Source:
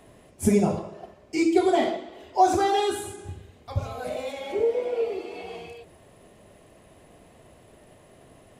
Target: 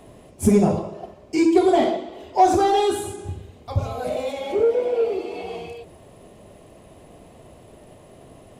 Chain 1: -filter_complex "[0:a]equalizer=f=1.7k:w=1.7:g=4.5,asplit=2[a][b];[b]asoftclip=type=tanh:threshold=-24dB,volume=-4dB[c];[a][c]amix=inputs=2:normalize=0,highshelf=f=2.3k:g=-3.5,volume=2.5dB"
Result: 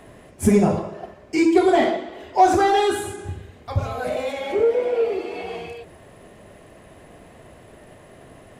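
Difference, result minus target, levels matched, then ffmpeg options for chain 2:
2000 Hz band +6.0 dB
-filter_complex "[0:a]equalizer=f=1.7k:w=1.7:g=-5.5,asplit=2[a][b];[b]asoftclip=type=tanh:threshold=-24dB,volume=-4dB[c];[a][c]amix=inputs=2:normalize=0,highshelf=f=2.3k:g=-3.5,volume=2.5dB"

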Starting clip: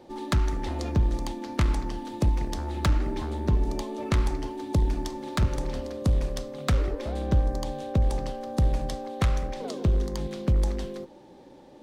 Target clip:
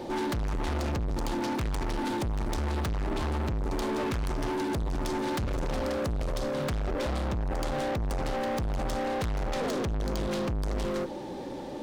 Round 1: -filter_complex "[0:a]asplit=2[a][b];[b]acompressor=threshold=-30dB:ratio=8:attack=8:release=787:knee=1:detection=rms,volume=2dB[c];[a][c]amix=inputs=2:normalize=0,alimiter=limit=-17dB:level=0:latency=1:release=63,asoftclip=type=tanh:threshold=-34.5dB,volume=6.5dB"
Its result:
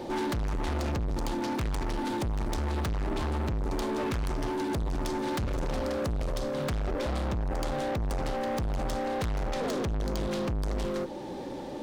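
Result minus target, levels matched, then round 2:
compressor: peak gain reduction +7.5 dB
-filter_complex "[0:a]asplit=2[a][b];[b]acompressor=threshold=-21.5dB:ratio=8:attack=8:release=787:knee=1:detection=rms,volume=2dB[c];[a][c]amix=inputs=2:normalize=0,alimiter=limit=-17dB:level=0:latency=1:release=63,asoftclip=type=tanh:threshold=-34.5dB,volume=6.5dB"

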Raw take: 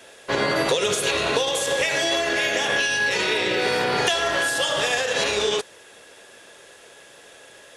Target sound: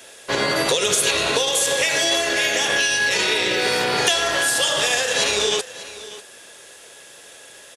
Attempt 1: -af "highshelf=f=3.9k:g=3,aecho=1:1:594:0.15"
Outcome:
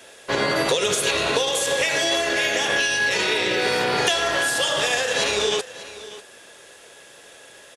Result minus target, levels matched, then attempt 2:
8000 Hz band -3.0 dB
-af "highshelf=f=3.9k:g=9.5,aecho=1:1:594:0.15"

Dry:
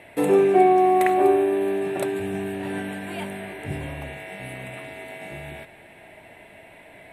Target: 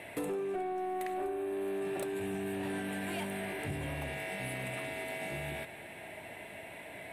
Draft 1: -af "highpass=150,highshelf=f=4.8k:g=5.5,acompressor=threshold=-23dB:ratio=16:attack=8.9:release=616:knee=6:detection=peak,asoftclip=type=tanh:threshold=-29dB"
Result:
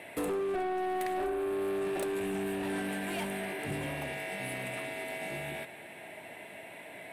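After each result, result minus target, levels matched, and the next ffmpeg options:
compressor: peak gain reduction -6 dB; 125 Hz band -4.0 dB
-af "highpass=150,highshelf=f=4.8k:g=5.5,acompressor=threshold=-29.5dB:ratio=16:attack=8.9:release=616:knee=6:detection=peak,asoftclip=type=tanh:threshold=-29dB"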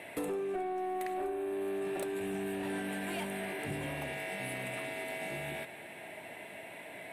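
125 Hz band -3.0 dB
-af "highpass=60,highshelf=f=4.8k:g=5.5,acompressor=threshold=-29.5dB:ratio=16:attack=8.9:release=616:knee=6:detection=peak,asoftclip=type=tanh:threshold=-29dB"

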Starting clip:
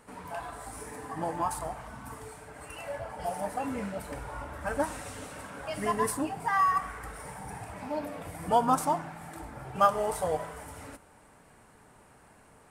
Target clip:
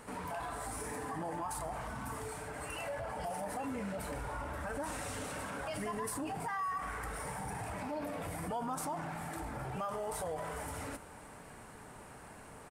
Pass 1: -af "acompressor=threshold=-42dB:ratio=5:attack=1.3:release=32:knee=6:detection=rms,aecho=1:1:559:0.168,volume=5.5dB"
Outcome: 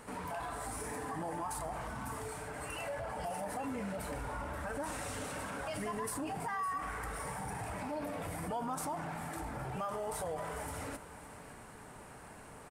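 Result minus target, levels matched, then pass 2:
echo-to-direct +9 dB
-af "acompressor=threshold=-42dB:ratio=5:attack=1.3:release=32:knee=6:detection=rms,aecho=1:1:559:0.0596,volume=5.5dB"

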